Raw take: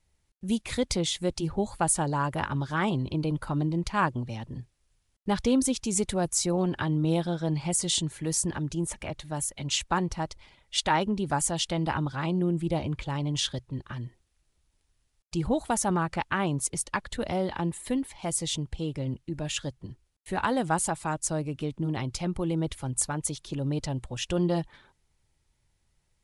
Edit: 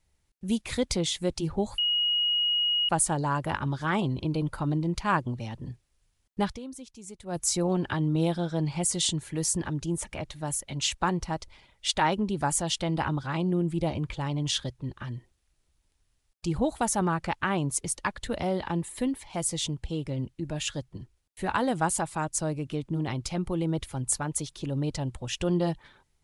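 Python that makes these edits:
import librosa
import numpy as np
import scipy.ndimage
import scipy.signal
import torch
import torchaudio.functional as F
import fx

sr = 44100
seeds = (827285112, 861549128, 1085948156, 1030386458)

y = fx.edit(x, sr, fx.insert_tone(at_s=1.78, length_s=1.11, hz=2890.0, db=-22.5),
    fx.fade_down_up(start_s=5.31, length_s=1.0, db=-17.0, fade_s=0.17), tone=tone)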